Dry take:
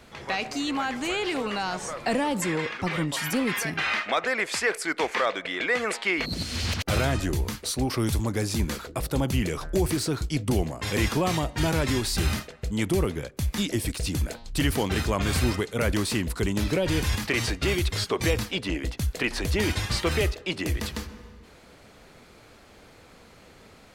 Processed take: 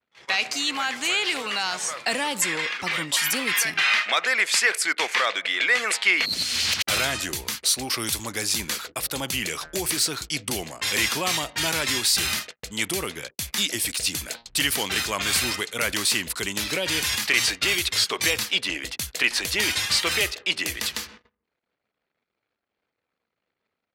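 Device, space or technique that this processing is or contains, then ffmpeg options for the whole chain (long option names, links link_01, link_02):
filter by subtraction: -filter_complex "[0:a]lowshelf=frequency=290:gain=8.5,anlmdn=0.0158,highshelf=frequency=5800:gain=4.5,agate=range=-24dB:threshold=-35dB:ratio=16:detection=peak,asplit=2[link_01][link_02];[link_02]lowpass=2800,volume=-1[link_03];[link_01][link_03]amix=inputs=2:normalize=0,volume=5.5dB"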